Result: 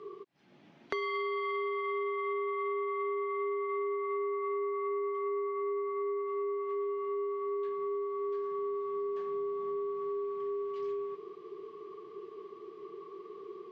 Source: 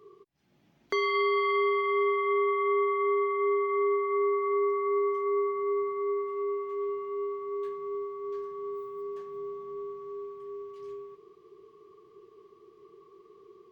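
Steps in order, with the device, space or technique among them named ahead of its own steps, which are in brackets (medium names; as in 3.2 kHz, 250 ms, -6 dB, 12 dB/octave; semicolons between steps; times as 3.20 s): AM radio (band-pass 190–4000 Hz; compression 6:1, threshold -41 dBFS, peak gain reduction 16.5 dB; saturation -28 dBFS, distortion -33 dB); trim +8.5 dB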